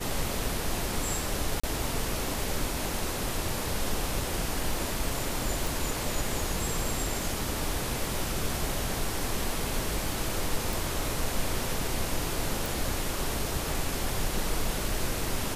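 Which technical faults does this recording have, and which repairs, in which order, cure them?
1.60–1.64 s: dropout 35 ms
5.67 s: pop
10.73 s: pop
12.66 s: pop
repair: de-click; interpolate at 1.60 s, 35 ms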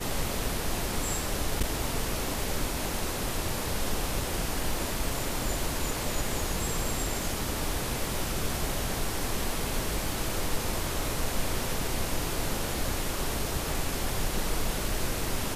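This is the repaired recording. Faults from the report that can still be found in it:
nothing left

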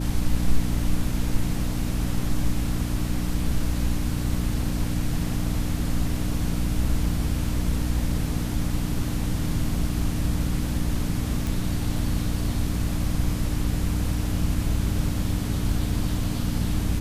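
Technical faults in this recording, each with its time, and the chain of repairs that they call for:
hum 60 Hz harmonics 5 -28 dBFS
11.47 s: pop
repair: de-click; de-hum 60 Hz, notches 5

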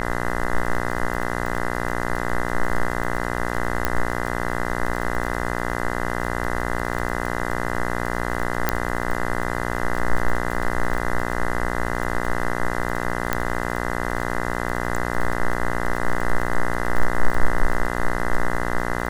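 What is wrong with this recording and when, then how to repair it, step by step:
buzz 60 Hz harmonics 34 -26 dBFS
crackle 21 per s -25 dBFS
3.85 s: pop -6 dBFS
8.69 s: pop -4 dBFS
13.33 s: pop -6 dBFS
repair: de-click; de-hum 60 Hz, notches 34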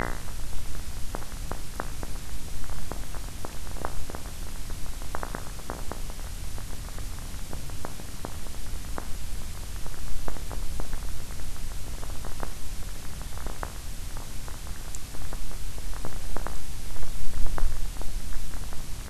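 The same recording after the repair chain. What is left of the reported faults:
nothing left

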